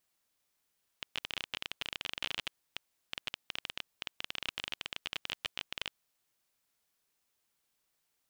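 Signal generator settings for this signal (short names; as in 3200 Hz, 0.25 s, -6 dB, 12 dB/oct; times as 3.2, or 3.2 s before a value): random clicks 20/s -18 dBFS 4.95 s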